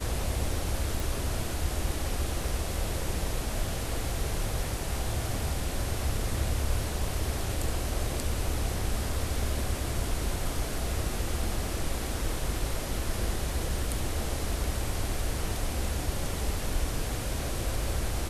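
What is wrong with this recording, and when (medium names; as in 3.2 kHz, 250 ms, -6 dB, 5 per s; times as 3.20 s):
1.00 s: pop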